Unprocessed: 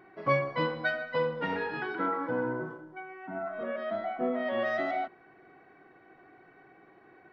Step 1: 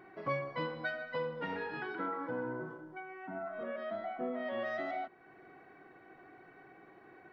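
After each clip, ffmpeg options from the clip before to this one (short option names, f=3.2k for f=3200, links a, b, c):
-af "acompressor=threshold=-47dB:ratio=1.5"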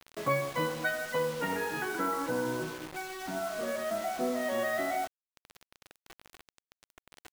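-af "acrusher=bits=7:mix=0:aa=0.000001,volume=6dB"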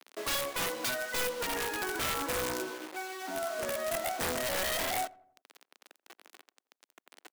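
-filter_complex "[0:a]highpass=f=270:w=0.5412,highpass=f=270:w=1.3066,aeval=exprs='(mod(21.1*val(0)+1,2)-1)/21.1':c=same,asplit=2[a][b];[b]adelay=86,lowpass=f=1.3k:p=1,volume=-21dB,asplit=2[c][d];[d]adelay=86,lowpass=f=1.3k:p=1,volume=0.53,asplit=2[e][f];[f]adelay=86,lowpass=f=1.3k:p=1,volume=0.53,asplit=2[g][h];[h]adelay=86,lowpass=f=1.3k:p=1,volume=0.53[i];[a][c][e][g][i]amix=inputs=5:normalize=0"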